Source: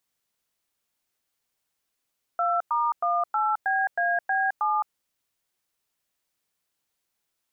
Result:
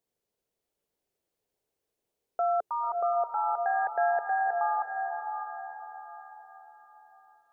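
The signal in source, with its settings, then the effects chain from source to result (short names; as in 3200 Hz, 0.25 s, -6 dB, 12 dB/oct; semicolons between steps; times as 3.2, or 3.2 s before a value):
DTMF "2*18BAB7", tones 0.214 s, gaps 0.103 s, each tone -24 dBFS
EQ curve 280 Hz 0 dB, 430 Hz +9 dB, 1200 Hz -9 dB; diffused feedback echo 0.563 s, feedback 42%, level -5 dB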